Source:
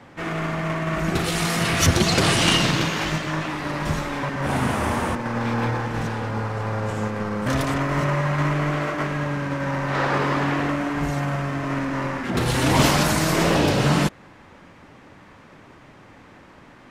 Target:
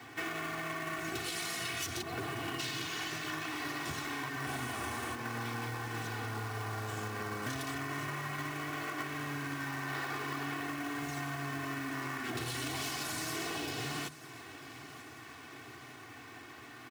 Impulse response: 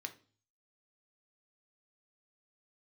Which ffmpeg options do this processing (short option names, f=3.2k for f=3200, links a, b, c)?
-filter_complex "[0:a]asplit=3[a][b][c];[a]afade=t=out:st=2.01:d=0.02[d];[b]lowpass=1.4k,afade=t=in:st=2.01:d=0.02,afade=t=out:st=2.58:d=0.02[e];[c]afade=t=in:st=2.58:d=0.02[f];[d][e][f]amix=inputs=3:normalize=0,aeval=exprs='0.224*(abs(mod(val(0)/0.224+3,4)-2)-1)':c=same,highpass=f=110:w=0.5412,highpass=f=110:w=1.3066,equalizer=f=460:t=o:w=2.9:g=-8.5,aecho=1:1:2.7:0.91,acompressor=threshold=-35dB:ratio=12,acrusher=bits=3:mode=log:mix=0:aa=0.000001,bandreject=f=50:t=h:w=6,bandreject=f=100:t=h:w=6,bandreject=f=150:t=h:w=6,asplit=2[g][h];[h]aecho=0:1:940|1880|2820|3760|4700:0.15|0.0823|0.0453|0.0249|0.0137[i];[g][i]amix=inputs=2:normalize=0"